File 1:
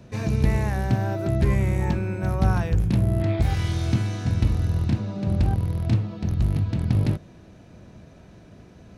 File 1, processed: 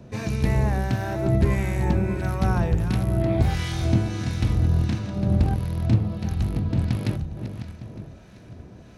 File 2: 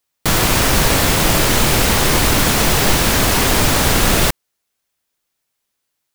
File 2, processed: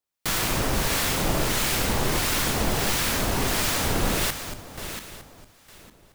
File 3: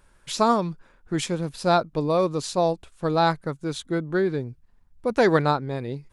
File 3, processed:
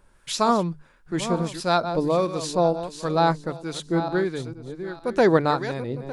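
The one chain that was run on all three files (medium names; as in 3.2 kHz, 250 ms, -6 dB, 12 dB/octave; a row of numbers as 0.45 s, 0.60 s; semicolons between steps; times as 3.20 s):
backward echo that repeats 454 ms, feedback 44%, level -10 dB; hum notches 50/100/150 Hz; harmonic tremolo 1.5 Hz, depth 50%, crossover 1.1 kHz; normalise loudness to -24 LUFS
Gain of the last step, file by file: +3.0 dB, -8.0 dB, +2.5 dB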